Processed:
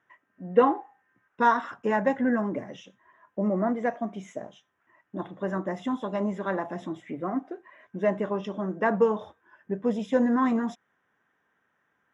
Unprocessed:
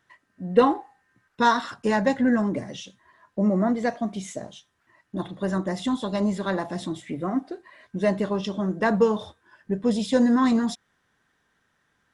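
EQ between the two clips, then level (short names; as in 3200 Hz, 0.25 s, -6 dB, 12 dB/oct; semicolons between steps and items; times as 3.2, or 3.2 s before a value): running mean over 10 samples; HPF 320 Hz 6 dB/oct; 0.0 dB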